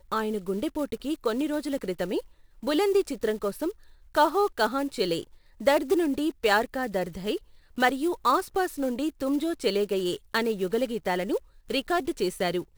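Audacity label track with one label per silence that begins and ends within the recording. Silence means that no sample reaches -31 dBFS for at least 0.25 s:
2.200000	2.630000	silence
3.700000	4.150000	silence
5.230000	5.610000	silence
7.370000	7.780000	silence
11.370000	11.700000	silence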